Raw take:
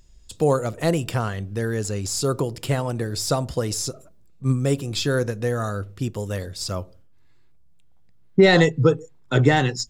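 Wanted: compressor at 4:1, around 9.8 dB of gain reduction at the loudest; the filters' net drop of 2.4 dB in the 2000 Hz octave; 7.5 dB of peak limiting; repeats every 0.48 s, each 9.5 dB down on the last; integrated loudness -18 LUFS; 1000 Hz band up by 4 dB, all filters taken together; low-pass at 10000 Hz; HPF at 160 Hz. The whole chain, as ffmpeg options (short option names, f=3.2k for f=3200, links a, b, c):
-af "highpass=160,lowpass=10k,equalizer=f=1k:t=o:g=7,equalizer=f=2k:t=o:g=-5,acompressor=threshold=-22dB:ratio=4,alimiter=limit=-17dB:level=0:latency=1,aecho=1:1:480|960|1440|1920:0.335|0.111|0.0365|0.012,volume=11dB"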